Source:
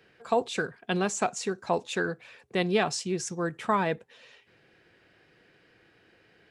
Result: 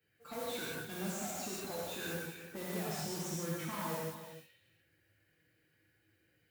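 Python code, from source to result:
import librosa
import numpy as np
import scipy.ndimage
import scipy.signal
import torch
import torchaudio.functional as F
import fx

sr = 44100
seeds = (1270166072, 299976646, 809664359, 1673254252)

y = fx.bin_expand(x, sr, power=1.5)
y = fx.mod_noise(y, sr, seeds[0], snr_db=13)
y = fx.high_shelf(y, sr, hz=6100.0, db=11.5)
y = fx.tube_stage(y, sr, drive_db=44.0, bias=0.45)
y = scipy.signal.sosfilt(scipy.signal.butter(2, 71.0, 'highpass', fs=sr, output='sos'), y)
y = fx.high_shelf(y, sr, hz=2300.0, db=-7.5)
y = y + 10.0 ** (-11.5 / 20.0) * np.pad(y, (int(295 * sr / 1000.0), 0))[:len(y)]
y = fx.rev_gated(y, sr, seeds[1], gate_ms=220, shape='flat', drr_db=-6.0)
y = F.gain(torch.from_numpy(y), 2.5).numpy()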